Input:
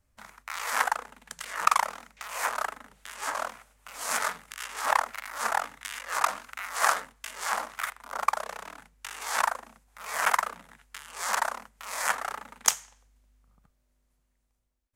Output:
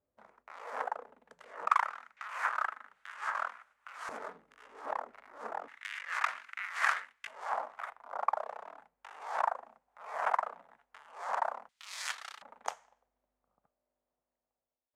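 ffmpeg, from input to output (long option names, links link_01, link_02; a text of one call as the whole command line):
ffmpeg -i in.wav -af "asetnsamples=nb_out_samples=441:pad=0,asendcmd='1.7 bandpass f 1400;4.09 bandpass f 370;5.68 bandpass f 2000;7.27 bandpass f 710;11.69 bandpass f 3800;12.42 bandpass f 660',bandpass=frequency=480:width_type=q:width=1.8:csg=0" out.wav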